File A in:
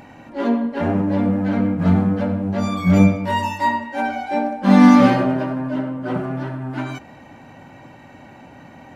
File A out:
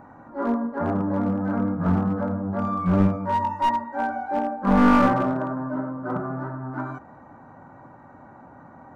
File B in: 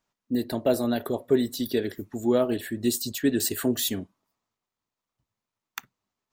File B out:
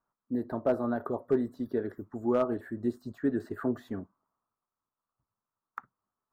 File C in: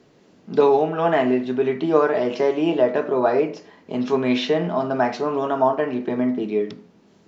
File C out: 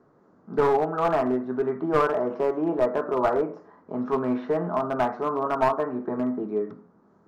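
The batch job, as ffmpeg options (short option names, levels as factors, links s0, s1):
-filter_complex "[0:a]acrossover=split=3700[s0][s1];[s1]acompressor=threshold=0.00355:ratio=4:attack=1:release=60[s2];[s0][s2]amix=inputs=2:normalize=0,highshelf=f=1900:t=q:w=3:g=-14,aeval=exprs='clip(val(0),-1,0.224)':c=same,volume=0.531"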